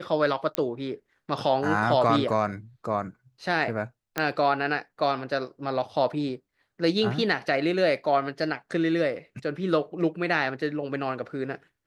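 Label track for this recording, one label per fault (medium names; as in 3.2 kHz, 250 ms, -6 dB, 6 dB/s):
0.550000	0.550000	pop -10 dBFS
4.180000	4.180000	pop -10 dBFS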